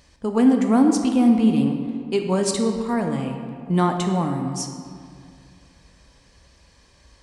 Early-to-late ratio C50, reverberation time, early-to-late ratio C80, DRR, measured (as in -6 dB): 5.5 dB, 2.3 s, 6.5 dB, 4.0 dB